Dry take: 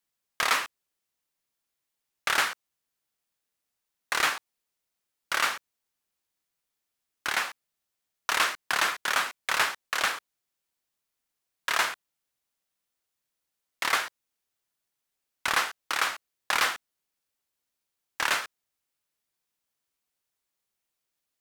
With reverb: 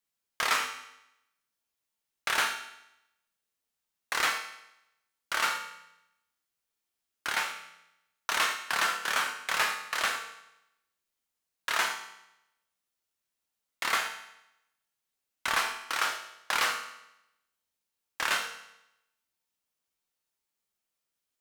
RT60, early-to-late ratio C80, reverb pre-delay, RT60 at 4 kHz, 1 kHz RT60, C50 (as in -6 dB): 0.85 s, 10.5 dB, 4 ms, 0.80 s, 0.85 s, 8.5 dB